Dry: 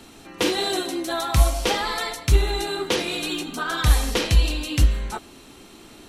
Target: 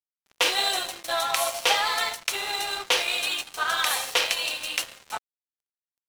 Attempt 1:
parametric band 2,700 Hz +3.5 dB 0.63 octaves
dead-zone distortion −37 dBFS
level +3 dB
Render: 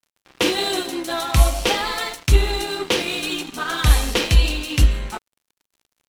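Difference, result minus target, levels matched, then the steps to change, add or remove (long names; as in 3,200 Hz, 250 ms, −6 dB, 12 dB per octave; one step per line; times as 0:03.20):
500 Hz band +3.5 dB
add first: high-pass filter 580 Hz 24 dB per octave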